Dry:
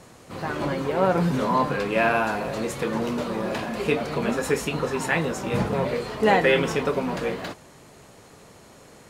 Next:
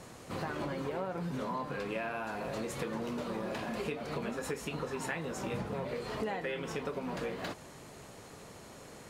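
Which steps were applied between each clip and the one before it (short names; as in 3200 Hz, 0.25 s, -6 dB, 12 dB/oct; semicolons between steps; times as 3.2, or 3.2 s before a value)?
compressor 10:1, threshold -32 dBFS, peak gain reduction 18 dB; gain -1.5 dB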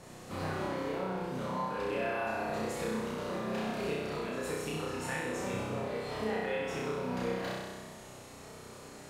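flutter echo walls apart 5.5 m, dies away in 1.3 s; gain -3.5 dB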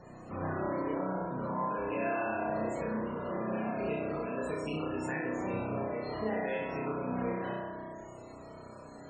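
band-limited delay 61 ms, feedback 81%, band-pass 540 Hz, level -6 dB; loudest bins only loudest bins 64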